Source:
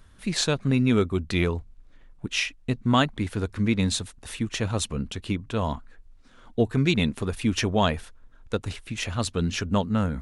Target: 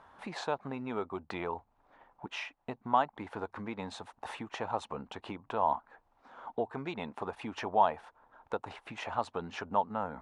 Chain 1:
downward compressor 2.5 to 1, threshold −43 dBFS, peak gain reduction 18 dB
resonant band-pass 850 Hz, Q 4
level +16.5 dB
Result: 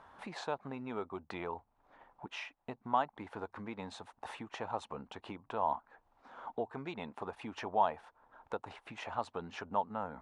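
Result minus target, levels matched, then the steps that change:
downward compressor: peak gain reduction +4 dB
change: downward compressor 2.5 to 1, threshold −36.5 dBFS, peak gain reduction 14 dB

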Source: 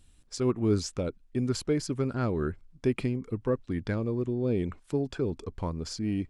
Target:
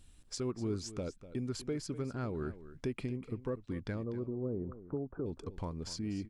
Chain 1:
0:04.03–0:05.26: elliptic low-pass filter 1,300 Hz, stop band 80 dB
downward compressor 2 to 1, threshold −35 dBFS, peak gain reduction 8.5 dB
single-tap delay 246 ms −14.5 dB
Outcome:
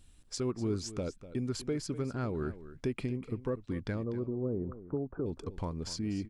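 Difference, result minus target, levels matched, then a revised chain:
downward compressor: peak gain reduction −3 dB
0:04.03–0:05.26: elliptic low-pass filter 1,300 Hz, stop band 80 dB
downward compressor 2 to 1, threshold −41 dBFS, peak gain reduction 11.5 dB
single-tap delay 246 ms −14.5 dB

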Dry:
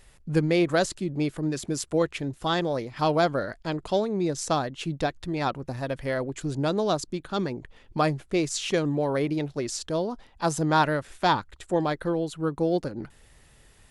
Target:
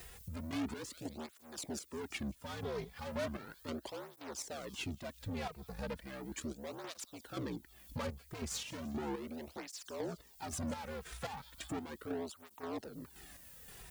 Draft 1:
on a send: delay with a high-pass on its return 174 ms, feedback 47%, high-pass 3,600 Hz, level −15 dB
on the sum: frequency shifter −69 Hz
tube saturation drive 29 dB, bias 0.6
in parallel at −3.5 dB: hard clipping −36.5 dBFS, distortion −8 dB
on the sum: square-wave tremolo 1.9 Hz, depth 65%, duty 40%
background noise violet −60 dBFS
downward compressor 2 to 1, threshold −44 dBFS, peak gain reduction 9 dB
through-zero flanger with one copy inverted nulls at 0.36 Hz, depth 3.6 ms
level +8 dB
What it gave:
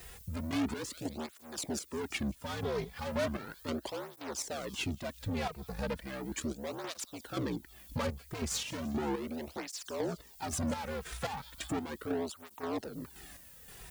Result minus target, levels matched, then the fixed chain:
downward compressor: peak gain reduction −5.5 dB
on a send: delay with a high-pass on its return 174 ms, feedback 47%, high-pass 3,600 Hz, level −15 dB
on the sum: frequency shifter −69 Hz
tube saturation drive 29 dB, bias 0.6
in parallel at −3.5 dB: hard clipping −36.5 dBFS, distortion −8 dB
on the sum: square-wave tremolo 1.9 Hz, depth 65%, duty 40%
background noise violet −60 dBFS
downward compressor 2 to 1, threshold −55 dBFS, peak gain reduction 14.5 dB
through-zero flanger with one copy inverted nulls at 0.36 Hz, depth 3.6 ms
level +8 dB

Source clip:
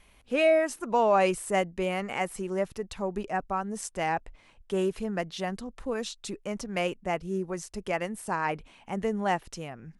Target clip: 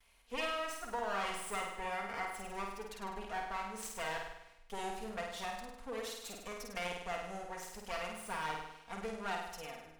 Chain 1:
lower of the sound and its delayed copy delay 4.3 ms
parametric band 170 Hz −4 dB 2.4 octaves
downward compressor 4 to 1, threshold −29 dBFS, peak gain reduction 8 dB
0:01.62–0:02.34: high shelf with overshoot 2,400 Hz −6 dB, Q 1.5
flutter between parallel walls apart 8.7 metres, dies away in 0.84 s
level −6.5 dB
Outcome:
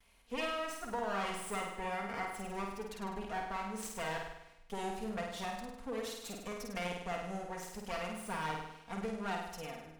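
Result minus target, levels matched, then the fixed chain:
125 Hz band +6.0 dB
lower of the sound and its delayed copy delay 4.3 ms
parametric band 170 Hz −12 dB 2.4 octaves
downward compressor 4 to 1, threshold −29 dBFS, peak gain reduction 7 dB
0:01.62–0:02.34: high shelf with overshoot 2,400 Hz −6 dB, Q 1.5
flutter between parallel walls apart 8.7 metres, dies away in 0.84 s
level −6.5 dB

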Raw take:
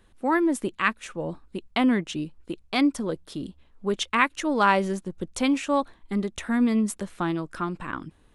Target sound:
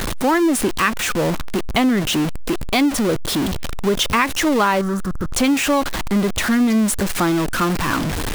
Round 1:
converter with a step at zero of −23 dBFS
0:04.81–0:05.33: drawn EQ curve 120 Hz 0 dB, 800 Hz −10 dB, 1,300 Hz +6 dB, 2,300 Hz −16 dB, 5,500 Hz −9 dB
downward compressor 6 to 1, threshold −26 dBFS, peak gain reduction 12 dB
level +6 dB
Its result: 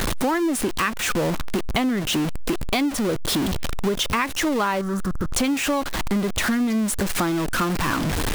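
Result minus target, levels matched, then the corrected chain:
downward compressor: peak gain reduction +6 dB
converter with a step at zero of −23 dBFS
0:04.81–0:05.33: drawn EQ curve 120 Hz 0 dB, 800 Hz −10 dB, 1,300 Hz +6 dB, 2,300 Hz −16 dB, 5,500 Hz −9 dB
downward compressor 6 to 1, threshold −19 dBFS, peak gain reduction 6 dB
level +6 dB

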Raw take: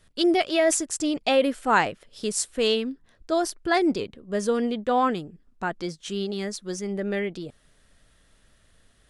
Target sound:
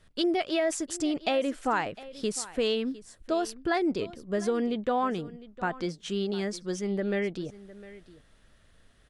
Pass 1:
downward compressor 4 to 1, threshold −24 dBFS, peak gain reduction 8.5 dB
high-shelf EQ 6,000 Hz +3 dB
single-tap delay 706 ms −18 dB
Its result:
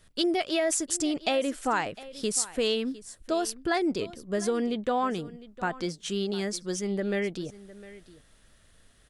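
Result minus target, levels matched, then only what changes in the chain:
8,000 Hz band +6.5 dB
change: high-shelf EQ 6,000 Hz −8.5 dB

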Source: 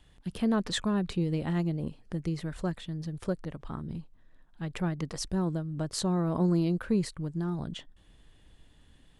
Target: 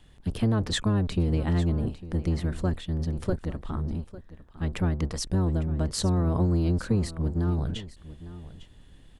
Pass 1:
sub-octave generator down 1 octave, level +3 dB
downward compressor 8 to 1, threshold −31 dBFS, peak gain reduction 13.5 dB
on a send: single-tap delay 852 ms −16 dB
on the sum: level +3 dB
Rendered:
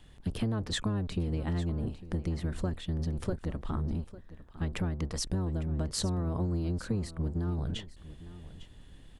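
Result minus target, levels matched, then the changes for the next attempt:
downward compressor: peak gain reduction +7.5 dB
change: downward compressor 8 to 1, threshold −22.5 dBFS, peak gain reduction 6 dB

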